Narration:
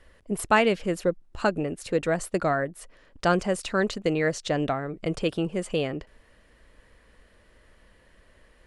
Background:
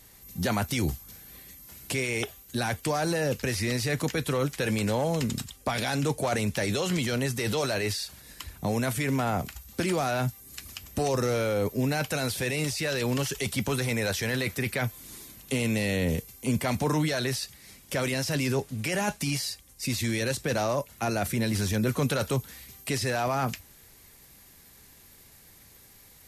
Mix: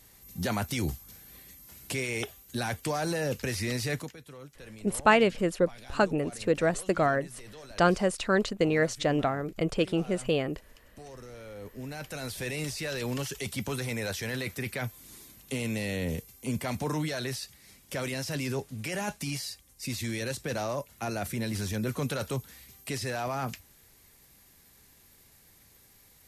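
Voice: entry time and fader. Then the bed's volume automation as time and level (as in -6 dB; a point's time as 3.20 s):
4.55 s, -0.5 dB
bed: 3.94 s -3 dB
4.17 s -20 dB
11.32 s -20 dB
12.47 s -5 dB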